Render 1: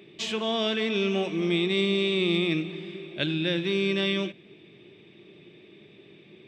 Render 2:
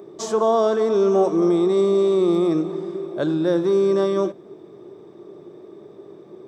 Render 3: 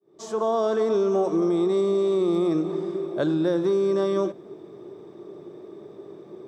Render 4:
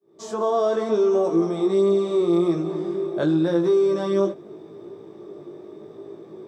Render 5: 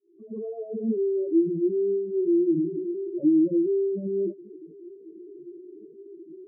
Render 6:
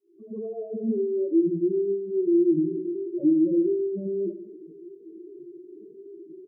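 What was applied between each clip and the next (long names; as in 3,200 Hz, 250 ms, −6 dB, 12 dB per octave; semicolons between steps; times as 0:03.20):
in parallel at +1.5 dB: brickwall limiter −20.5 dBFS, peak gain reduction 7 dB; on the sum: drawn EQ curve 210 Hz 0 dB, 400 Hz +10 dB, 1,200 Hz +11 dB, 2,600 Hz −22 dB, 5,800 Hz +5 dB; level −4 dB
fade in at the beginning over 0.73 s; downward compressor, threshold −19 dBFS, peak gain reduction 6 dB
chorus effect 0.82 Hz, delay 17.5 ms, depth 2.7 ms; level +4.5 dB
expanding power law on the bin magnitudes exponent 3.4; transistor ladder low-pass 310 Hz, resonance 50%; level +8.5 dB
repeating echo 70 ms, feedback 51%, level −10.5 dB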